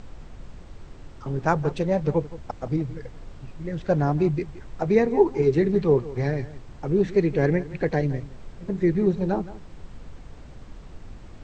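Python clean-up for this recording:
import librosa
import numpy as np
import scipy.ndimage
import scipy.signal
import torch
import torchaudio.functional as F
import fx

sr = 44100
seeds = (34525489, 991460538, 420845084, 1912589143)

y = fx.noise_reduce(x, sr, print_start_s=10.17, print_end_s=10.67, reduce_db=26.0)
y = fx.fix_echo_inverse(y, sr, delay_ms=169, level_db=-17.0)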